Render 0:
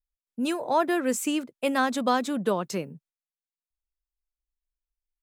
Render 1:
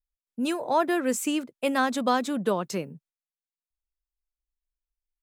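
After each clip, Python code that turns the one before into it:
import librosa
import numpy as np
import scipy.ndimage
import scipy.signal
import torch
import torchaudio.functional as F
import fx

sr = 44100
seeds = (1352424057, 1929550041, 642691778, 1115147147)

y = x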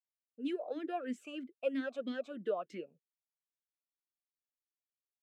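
y = fx.vowel_sweep(x, sr, vowels='a-i', hz=3.1)
y = y * librosa.db_to_amplitude(-2.0)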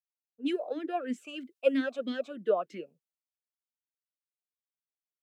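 y = fx.band_widen(x, sr, depth_pct=70)
y = y * librosa.db_to_amplitude(5.5)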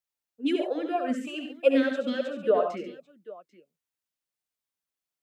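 y = fx.echo_multitap(x, sr, ms=(70, 93, 139, 791), db=(-7.5, -9.5, -12.0, -19.5))
y = y * librosa.db_to_amplitude(4.0)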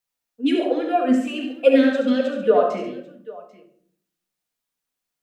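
y = fx.room_shoebox(x, sr, seeds[0], volume_m3=930.0, walls='furnished', distance_m=1.8)
y = y * librosa.db_to_amplitude(5.0)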